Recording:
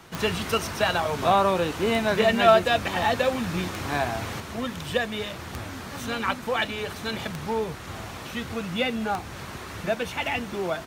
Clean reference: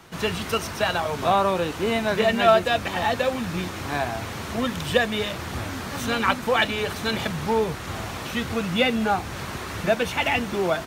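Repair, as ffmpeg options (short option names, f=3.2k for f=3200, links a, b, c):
-af "adeclick=t=4,asetnsamples=n=441:p=0,asendcmd='4.4 volume volume 5dB',volume=0dB"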